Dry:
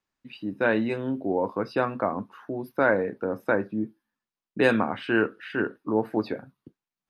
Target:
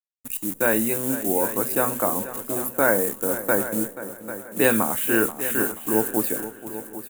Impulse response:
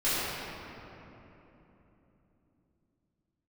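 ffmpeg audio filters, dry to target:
-filter_complex "[0:a]lowshelf=f=74:g=-5.5,acrusher=bits=8:dc=4:mix=0:aa=0.000001,asplit=2[a][b];[b]aecho=0:1:794|1588|2382:0.224|0.0493|0.0108[c];[a][c]amix=inputs=2:normalize=0,aexciter=amount=10.8:drive=7.2:freq=7.3k,asplit=2[d][e];[e]adelay=482,lowpass=f=4.1k:p=1,volume=-13.5dB,asplit=2[f][g];[g]adelay=482,lowpass=f=4.1k:p=1,volume=0.37,asplit=2[h][i];[i]adelay=482,lowpass=f=4.1k:p=1,volume=0.37,asplit=2[j][k];[k]adelay=482,lowpass=f=4.1k:p=1,volume=0.37[l];[f][h][j][l]amix=inputs=4:normalize=0[m];[d][m]amix=inputs=2:normalize=0,volume=1.5dB"

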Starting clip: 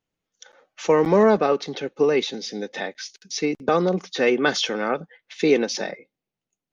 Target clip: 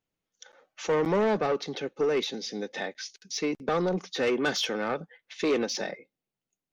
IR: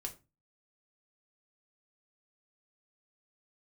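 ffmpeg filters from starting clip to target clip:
-af "asoftclip=type=tanh:threshold=-16.5dB,volume=-3.5dB"

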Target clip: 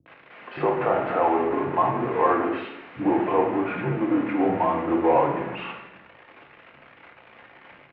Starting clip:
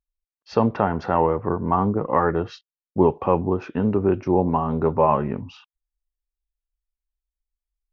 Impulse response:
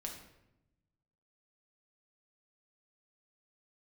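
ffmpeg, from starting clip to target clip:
-filter_complex "[0:a]aeval=exprs='val(0)+0.5*0.0841*sgn(val(0))':c=same,acrossover=split=290[a][b];[b]adelay=60[c];[a][c]amix=inputs=2:normalize=0[d];[1:a]atrim=start_sample=2205[e];[d][e]afir=irnorm=-1:irlink=0,highpass=f=300:t=q:w=0.5412,highpass=f=300:t=q:w=1.307,lowpass=f=2.6k:t=q:w=0.5176,lowpass=f=2.6k:t=q:w=0.7071,lowpass=f=2.6k:t=q:w=1.932,afreqshift=-73"

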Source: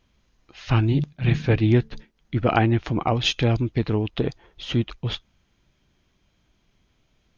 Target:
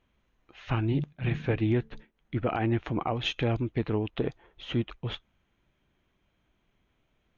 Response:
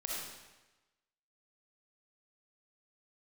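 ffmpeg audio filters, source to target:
-af "bass=f=250:g=-4,treble=f=4k:g=-9,alimiter=limit=-13.5dB:level=0:latency=1:release=106,equalizer=f=4.9k:t=o:w=0.46:g=-9,volume=-3.5dB"

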